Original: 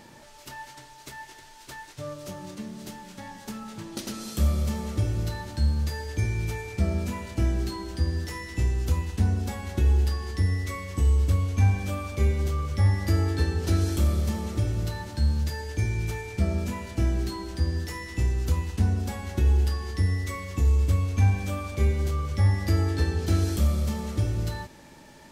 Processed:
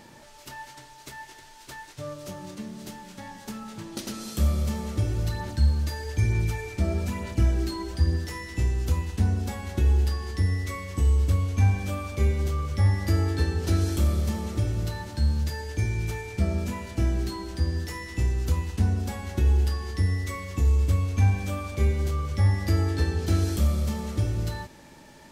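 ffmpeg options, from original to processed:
ffmpeg -i in.wav -filter_complex "[0:a]asplit=3[link_01][link_02][link_03];[link_01]afade=type=out:start_time=5.08:duration=0.02[link_04];[link_02]aphaser=in_gain=1:out_gain=1:delay=3.3:decay=0.37:speed=1.1:type=sinusoidal,afade=type=in:start_time=5.08:duration=0.02,afade=type=out:start_time=8.15:duration=0.02[link_05];[link_03]afade=type=in:start_time=8.15:duration=0.02[link_06];[link_04][link_05][link_06]amix=inputs=3:normalize=0" out.wav

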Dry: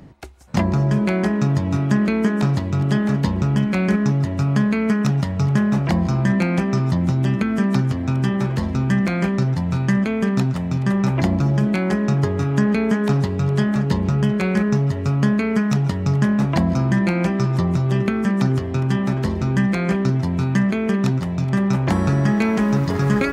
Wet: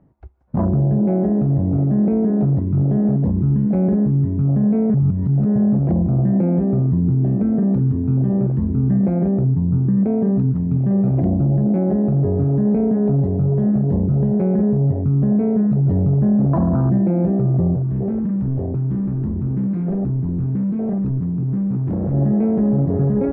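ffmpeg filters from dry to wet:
ffmpeg -i in.wav -filter_complex "[0:a]asettb=1/sr,asplit=3[link_01][link_02][link_03];[link_01]atrim=end=9.414[link_04];[link_02]atrim=start=9.41:end=9.97,asetpts=PTS-STARTPTS,afade=type=in:duration=0.004:curve=qsin,afade=type=out:start_time=0.556:duration=0.004:curve=qsin,lowpass=1400[link_05];[link_03]atrim=start=9.966[link_06];[link_04][link_05]acrossfade=duration=0.004:curve1=hsin:curve2=qsin[link_07];[link_07][link_06]acrossfade=duration=0.004:curve1=qsin:curve2=hsin,asettb=1/sr,asplit=3[link_08][link_09][link_10];[link_08]atrim=end=10.704[link_11];[link_09]atrim=start=10.7:end=11.27,asetpts=PTS-STARTPTS,afade=type=in:duration=0.004:curve=qsin,afade=type=out:start_time=0.566:duration=0.004:curve=qsin,equalizer=frequency=2900:width_type=o:width=0.98:gain=5[link_12];[link_10]atrim=start=11.266[link_13];[link_11][link_12]acrossfade=duration=0.004:curve1=hsin:curve2=qsin[link_14];[link_14][link_13]acrossfade=duration=0.004:curve1=qsin:curve2=hsin,asettb=1/sr,asplit=3[link_15][link_16][link_17];[link_15]atrim=end=15.854[link_18];[link_16]atrim=start=15.85:end=16.98,asetpts=PTS-STARTPTS,afade=type=in:duration=0.004:curve=qsin,afade=type=out:start_time=1.126:duration=0.004:curve=qsin,acontrast=31[link_19];[link_17]atrim=start=16.976[link_20];[link_18][link_19]acrossfade=duration=0.004:curve1=hsin:curve2=qsin[link_21];[link_21][link_20]acrossfade=duration=0.004:curve1=qsin:curve2=hsin,asettb=1/sr,asplit=3[link_22][link_23][link_24];[link_22]atrim=end=17.744[link_25];[link_23]atrim=start=17.74:end=22.14,asetpts=PTS-STARTPTS,afade=type=in:duration=0.004:curve=qsin,afade=type=out:start_time=4.396:duration=0.004:curve=qsin,asoftclip=type=hard:threshold=-22dB[link_26];[link_24]atrim=start=22.136[link_27];[link_25][link_26]acrossfade=duration=0.004:curve1=hsin:curve2=qsin[link_28];[link_28][link_27]acrossfade=duration=0.004:curve1=qsin:curve2=hsin,asplit=3[link_29][link_30][link_31];[link_29]atrim=end=4.942[link_32];[link_30]atrim=start=4.938:end=5.562,asetpts=PTS-STARTPTS,areverse[link_33];[link_31]atrim=start=5.558[link_34];[link_32][link_33]acrossfade=duration=0.004:curve1=hsin:curve2=hsin[link_35];[link_35][link_34]acrossfade=duration=0.004:curve1=hsin:curve2=hsin,afwtdn=0.1,lowpass=1100,alimiter=limit=-15dB:level=0:latency=1:release=13,volume=4dB" out.wav

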